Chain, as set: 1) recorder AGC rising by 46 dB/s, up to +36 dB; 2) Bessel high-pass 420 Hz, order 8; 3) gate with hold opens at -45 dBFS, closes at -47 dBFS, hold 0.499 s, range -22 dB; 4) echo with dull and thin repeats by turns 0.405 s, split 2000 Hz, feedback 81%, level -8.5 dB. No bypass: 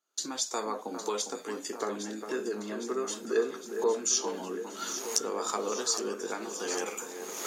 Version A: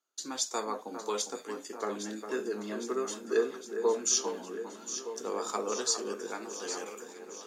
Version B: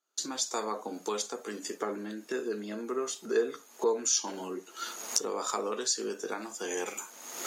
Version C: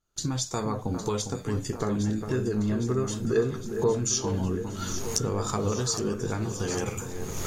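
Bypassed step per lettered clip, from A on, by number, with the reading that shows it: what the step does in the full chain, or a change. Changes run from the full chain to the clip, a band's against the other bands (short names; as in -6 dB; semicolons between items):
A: 1, crest factor change -5.0 dB; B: 4, echo-to-direct -6.5 dB to none; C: 2, 250 Hz band +9.0 dB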